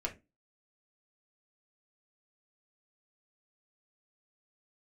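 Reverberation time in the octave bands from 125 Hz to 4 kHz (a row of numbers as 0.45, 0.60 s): 0.25, 0.35, 0.30, 0.20, 0.20, 0.15 s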